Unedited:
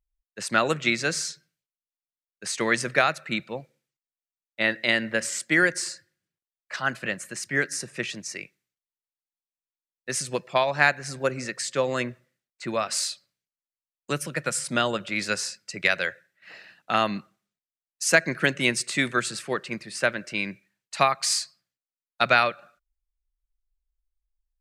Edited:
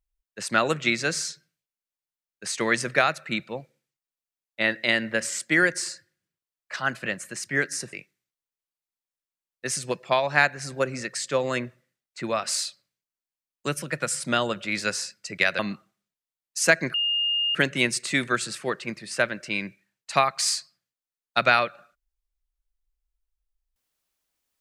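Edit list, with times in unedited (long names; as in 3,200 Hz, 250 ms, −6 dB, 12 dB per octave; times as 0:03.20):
0:07.93–0:08.37: remove
0:16.03–0:17.04: remove
0:18.39: insert tone 2,830 Hz −21.5 dBFS 0.61 s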